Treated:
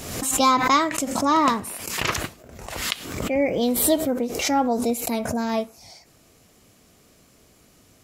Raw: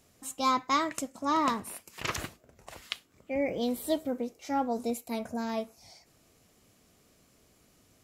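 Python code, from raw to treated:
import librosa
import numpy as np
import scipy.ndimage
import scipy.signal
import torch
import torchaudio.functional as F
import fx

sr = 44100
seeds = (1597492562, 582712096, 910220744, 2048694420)

y = fx.pre_swell(x, sr, db_per_s=48.0)
y = F.gain(torch.from_numpy(y), 8.0).numpy()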